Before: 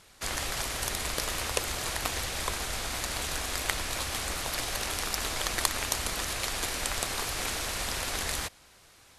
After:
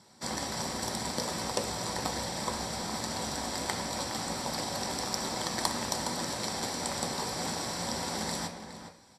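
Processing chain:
slap from a distant wall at 71 metres, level −9 dB
convolution reverb RT60 0.45 s, pre-delay 3 ms, DRR 2.5 dB
level −8.5 dB

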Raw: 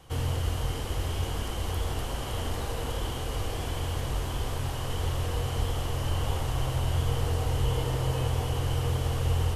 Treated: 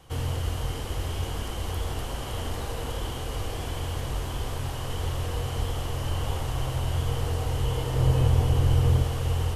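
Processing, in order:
0:07.96–0:09.04: low-shelf EQ 370 Hz +8 dB

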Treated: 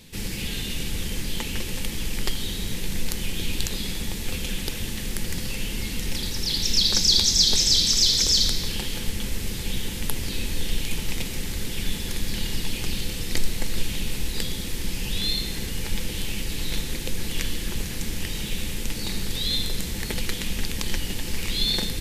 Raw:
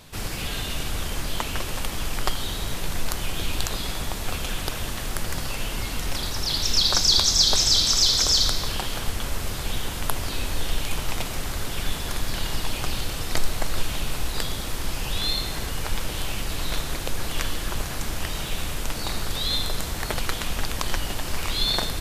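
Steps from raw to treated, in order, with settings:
flat-topped bell 890 Hz −12 dB
mains-hum notches 50/100/150/200 Hz
hollow resonant body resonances 200/510/860 Hz, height 9 dB, ringing for 90 ms

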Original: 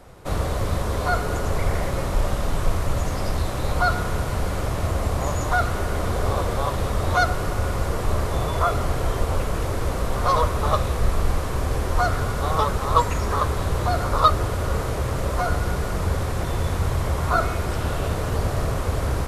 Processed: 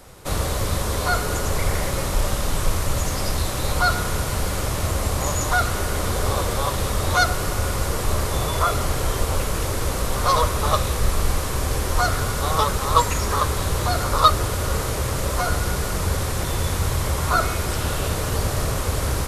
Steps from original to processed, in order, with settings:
high-shelf EQ 3,000 Hz +11 dB
notch filter 690 Hz, Q 17

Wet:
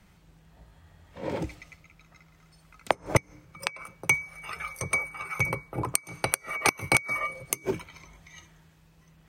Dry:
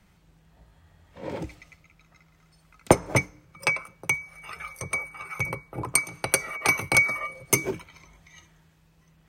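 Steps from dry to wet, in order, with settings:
gate with flip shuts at −8 dBFS, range −24 dB
level +2 dB

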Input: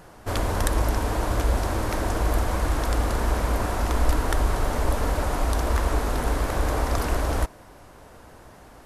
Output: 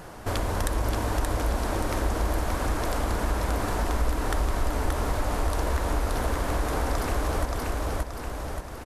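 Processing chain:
on a send: repeating echo 577 ms, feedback 33%, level −3 dB
on the sum: downward compressor 2 to 1, threshold −35 dBFS, peak gain reduction 12.5 dB
level +5 dB

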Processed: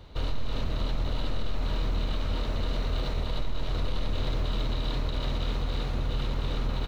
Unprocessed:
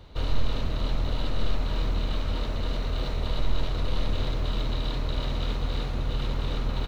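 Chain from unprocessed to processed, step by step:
brickwall limiter −20 dBFS, peak gain reduction 7.5 dB

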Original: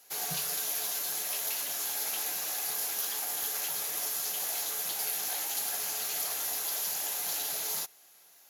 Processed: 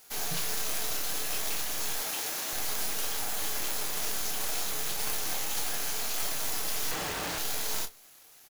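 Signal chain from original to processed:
stylus tracing distortion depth 0.11 ms
0:01.98–0:02.53: high-pass filter 220 Hz 12 dB per octave
log-companded quantiser 4 bits
0:06.91–0:07.38: comparator with hysteresis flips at −37 dBFS
double-tracking delay 28 ms −8 dB
convolution reverb RT60 0.25 s, pre-delay 6 ms, DRR 14 dB

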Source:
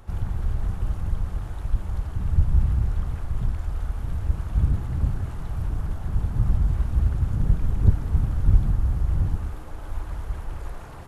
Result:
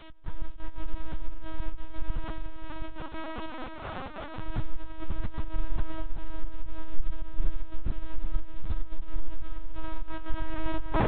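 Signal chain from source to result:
camcorder AGC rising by 13 dB per second
0:02.17–0:04.36: high-pass filter 390 Hz 24 dB per octave
downward compressor 3 to 1, threshold −18 dBFS, peak gain reduction 7.5 dB
bit-depth reduction 8 bits, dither triangular
gate pattern "x..xxx.x.xxxxx" 177 BPM −24 dB
multi-voice chorus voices 2, 0.22 Hz, delay 16 ms, depth 2.2 ms
frequency shifter −55 Hz
feedback delay with all-pass diffusion 458 ms, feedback 63%, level −5 dB
linear-prediction vocoder at 8 kHz pitch kept
level +4 dB

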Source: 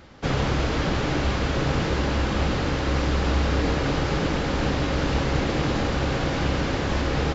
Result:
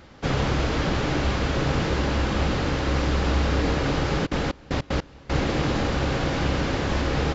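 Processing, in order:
0:04.25–0:05.32: gate pattern "x...xx..x." 153 BPM −24 dB

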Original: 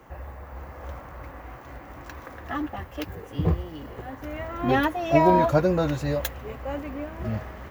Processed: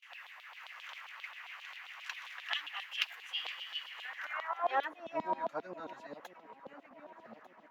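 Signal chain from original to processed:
auto-filter high-pass saw down 7.5 Hz 730–3,600 Hz
on a send: delay that swaps between a low-pass and a high-pass 598 ms, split 970 Hz, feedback 69%, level −14 dB
on the sum: band-pass filter sweep 2,800 Hz → 220 Hz, 0:04.03–0:05.09
high-shelf EQ 3,300 Hz +12 dB
noise gate with hold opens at −50 dBFS
level +2.5 dB

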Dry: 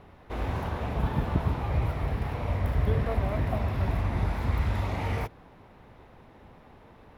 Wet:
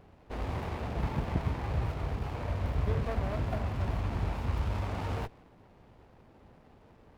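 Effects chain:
dynamic equaliser 1,500 Hz, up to +6 dB, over −51 dBFS, Q 1
windowed peak hold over 17 samples
level −4.5 dB

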